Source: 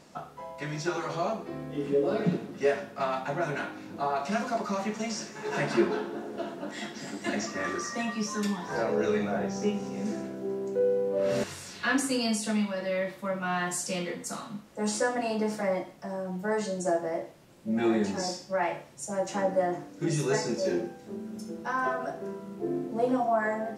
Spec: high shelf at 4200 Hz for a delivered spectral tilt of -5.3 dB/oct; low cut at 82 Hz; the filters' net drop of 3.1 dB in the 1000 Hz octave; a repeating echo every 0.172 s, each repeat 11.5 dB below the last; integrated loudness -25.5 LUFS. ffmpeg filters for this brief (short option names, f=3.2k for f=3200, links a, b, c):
-af "highpass=82,equalizer=f=1k:t=o:g=-4,highshelf=f=4.2k:g=-9,aecho=1:1:172|344|516:0.266|0.0718|0.0194,volume=6dB"